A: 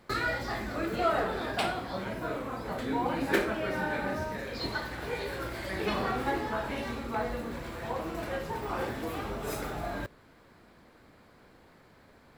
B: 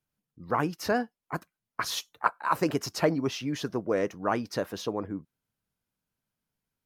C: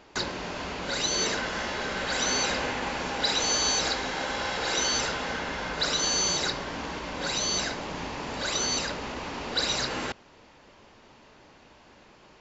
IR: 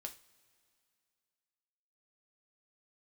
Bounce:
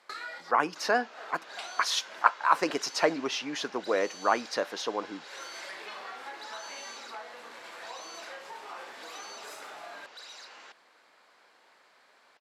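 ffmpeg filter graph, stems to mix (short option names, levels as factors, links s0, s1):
-filter_complex "[0:a]highshelf=f=5000:g=7,acompressor=threshold=0.0158:ratio=5,volume=0.944[s0];[1:a]adynamicequalizer=threshold=0.00794:dfrequency=210:dqfactor=0.71:tfrequency=210:tqfactor=0.71:attack=5:release=100:ratio=0.375:range=4:mode=boostabove:tftype=bell,volume=1.33,asplit=3[s1][s2][s3];[s2]volume=0.422[s4];[2:a]asoftclip=type=tanh:threshold=0.0376,adelay=600,volume=0.211[s5];[s3]apad=whole_len=545526[s6];[s0][s6]sidechaincompress=threshold=0.00708:ratio=8:attack=6.1:release=122[s7];[3:a]atrim=start_sample=2205[s8];[s4][s8]afir=irnorm=-1:irlink=0[s9];[s7][s1][s5][s9]amix=inputs=4:normalize=0,highpass=730,lowpass=7300"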